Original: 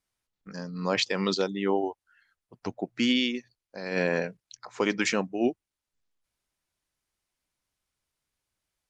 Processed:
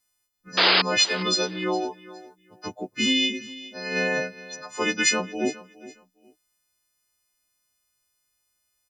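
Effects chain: frequency quantiser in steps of 3 st; painted sound noise, 0.57–0.82, 300–5100 Hz -18 dBFS; on a send: feedback echo 0.413 s, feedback 22%, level -18 dB

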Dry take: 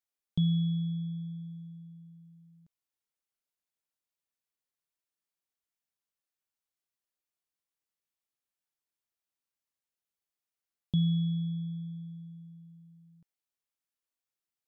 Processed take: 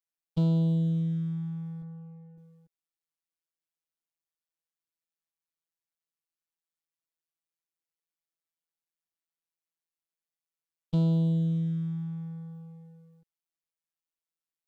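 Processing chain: 1.82–2.38 elliptic band-pass 130–1900 Hz; sample leveller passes 2; robotiser 164 Hz; Doppler distortion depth 0.24 ms

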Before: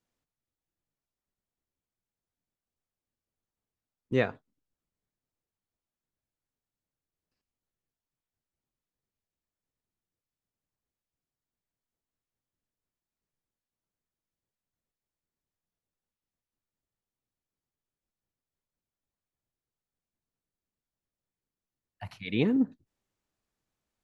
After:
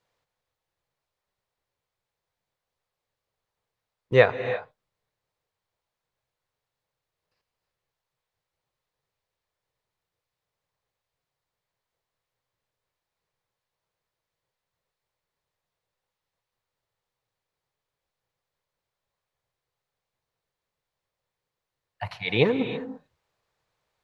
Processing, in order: graphic EQ 125/250/500/1000/2000/4000 Hz +8/-8/+11/+9/+7/+8 dB; non-linear reverb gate 0.36 s rising, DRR 9.5 dB

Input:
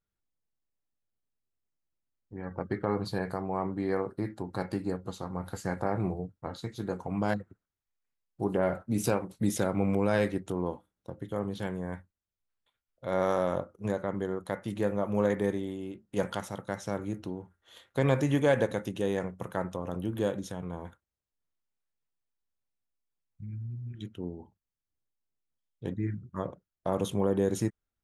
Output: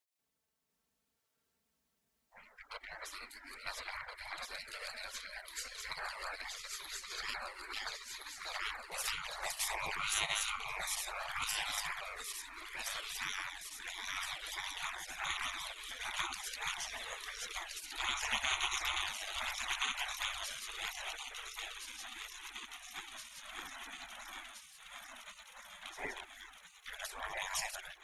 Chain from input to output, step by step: regenerating reverse delay 0.685 s, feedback 77%, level -1 dB; dynamic EQ 9800 Hz, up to -7 dB, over -59 dBFS, Q 0.85; envelope flanger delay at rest 4.5 ms, full sweep at -20.5 dBFS; spectral gate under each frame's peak -30 dB weak; gain +12 dB

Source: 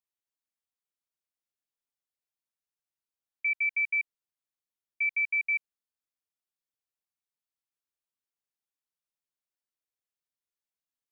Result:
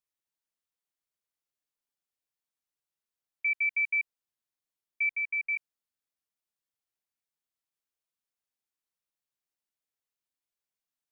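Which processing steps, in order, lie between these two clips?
5.11–5.55 LPF 2200 Hz -> 2400 Hz 24 dB/oct

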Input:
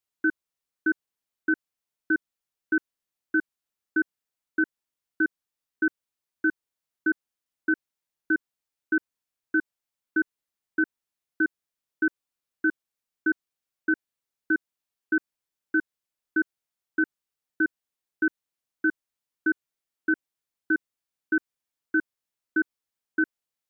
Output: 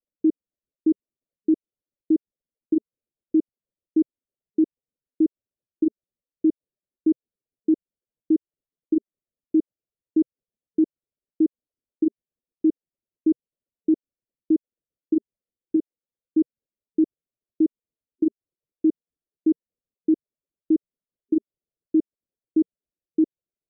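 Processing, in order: median-filter separation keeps percussive; steep low-pass 610 Hz 48 dB/oct; 15.76–16.37 low shelf 350 Hz -5.5 dB; gain +8 dB

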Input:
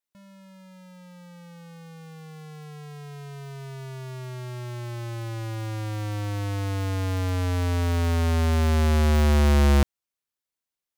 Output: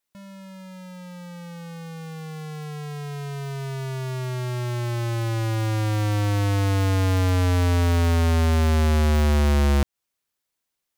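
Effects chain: compressor 6:1, threshold -27 dBFS, peak gain reduction 9 dB; gain +7.5 dB

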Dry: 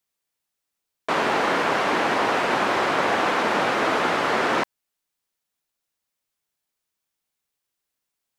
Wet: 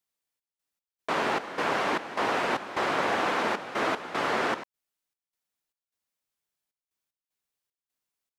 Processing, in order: step gate "xx.x.xx.xx.xx.xx" 76 bpm -12 dB; gain -5 dB

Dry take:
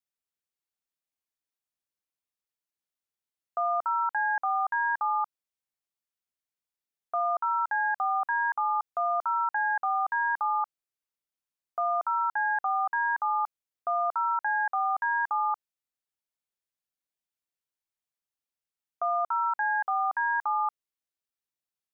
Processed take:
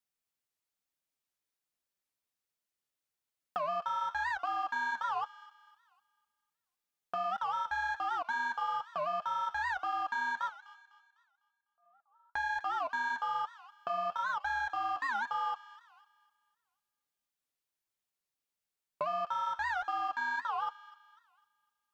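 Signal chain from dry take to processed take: 10.49–12.35 gate -21 dBFS, range -49 dB; 20.12–20.67 HPF 710 Hz 6 dB/oct; sample leveller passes 1; compressor 2:1, threshold -46 dBFS, peak gain reduction 12 dB; flange 1.1 Hz, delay 3 ms, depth 8.8 ms, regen -42%; thin delay 0.251 s, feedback 39%, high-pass 1600 Hz, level -13 dB; record warp 78 rpm, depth 250 cents; gain +7.5 dB

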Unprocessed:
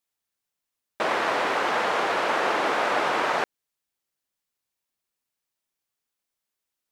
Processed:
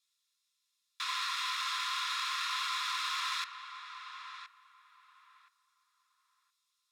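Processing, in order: Bessel low-pass 8100 Hz, order 2; high shelf 2800 Hz +11.5 dB; in parallel at -1.5 dB: limiter -20.5 dBFS, peak gain reduction 10.5 dB; on the sum: soft clip -25 dBFS, distortion -7 dB; rippled Chebyshev high-pass 1000 Hz, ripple 9 dB; notch comb 1500 Hz; on a send: darkening echo 1.021 s, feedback 22%, low-pass 1900 Hz, level -8 dB

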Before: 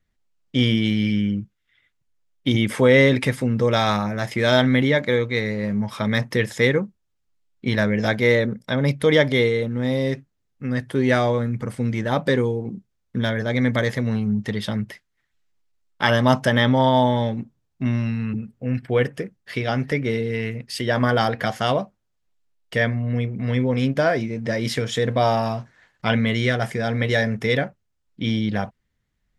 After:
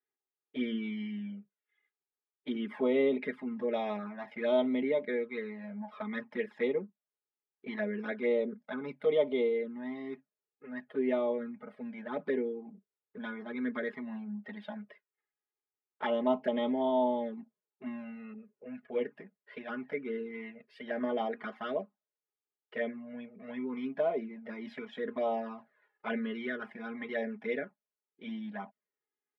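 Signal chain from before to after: HPF 270 Hz 24 dB/oct; high shelf 3800 Hz -5 dB; comb 4.8 ms, depth 79%; envelope flanger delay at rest 2.5 ms, full sweep at -14 dBFS; air absorption 480 m; gain -9 dB

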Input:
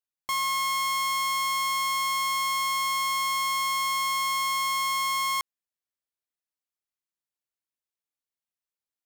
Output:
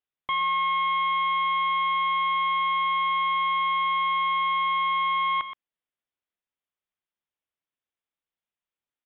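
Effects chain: on a send: echo 0.123 s -11.5 dB; on the sum: downsampling 8000 Hz; gain +2.5 dB

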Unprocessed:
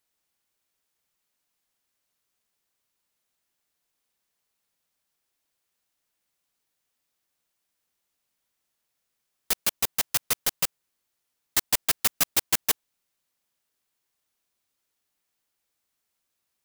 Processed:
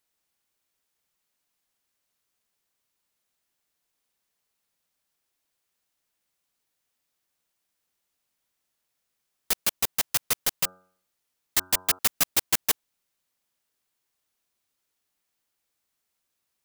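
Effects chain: 10.56–11.99 de-hum 92.33 Hz, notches 17

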